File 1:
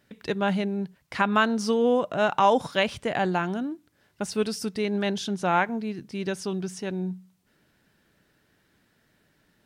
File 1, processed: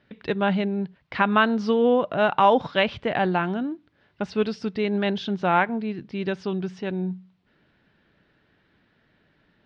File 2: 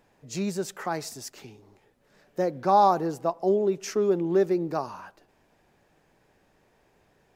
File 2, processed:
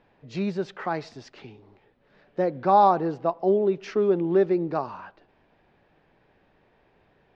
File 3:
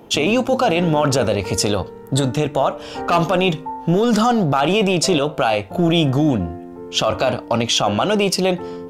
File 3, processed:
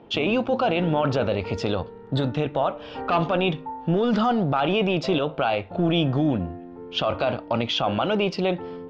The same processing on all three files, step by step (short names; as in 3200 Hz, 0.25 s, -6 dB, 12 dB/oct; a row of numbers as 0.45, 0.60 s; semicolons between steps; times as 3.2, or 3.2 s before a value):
LPF 3900 Hz 24 dB/oct; match loudness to -24 LUFS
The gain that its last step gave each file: +2.5, +1.5, -5.5 dB